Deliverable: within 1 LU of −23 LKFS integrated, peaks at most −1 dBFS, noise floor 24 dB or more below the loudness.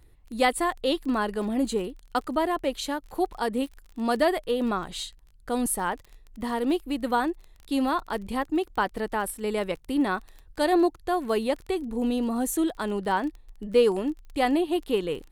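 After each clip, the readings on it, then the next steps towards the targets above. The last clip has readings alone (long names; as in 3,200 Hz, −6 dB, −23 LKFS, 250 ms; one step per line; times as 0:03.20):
crackle rate 27 per second; integrated loudness −27.5 LKFS; sample peak −9.5 dBFS; target loudness −23.0 LKFS
→ click removal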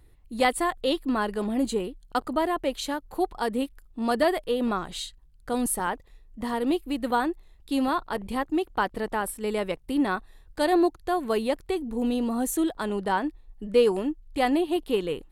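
crackle rate 0.065 per second; integrated loudness −27.5 LKFS; sample peak −9.5 dBFS; target loudness −23.0 LKFS
→ level +4.5 dB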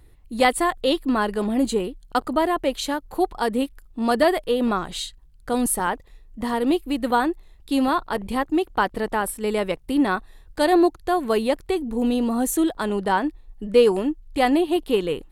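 integrated loudness −23.0 LKFS; sample peak −5.0 dBFS; background noise floor −50 dBFS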